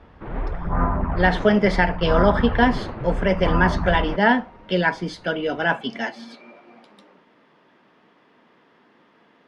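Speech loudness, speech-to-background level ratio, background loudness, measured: -21.5 LUFS, 5.5 dB, -27.0 LUFS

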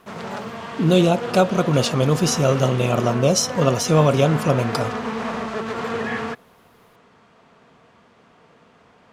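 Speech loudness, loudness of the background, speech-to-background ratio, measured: -19.0 LUFS, -28.5 LUFS, 9.5 dB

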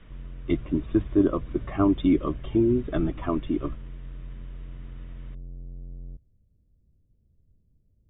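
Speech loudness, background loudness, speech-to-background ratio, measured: -25.5 LUFS, -43.0 LUFS, 17.5 dB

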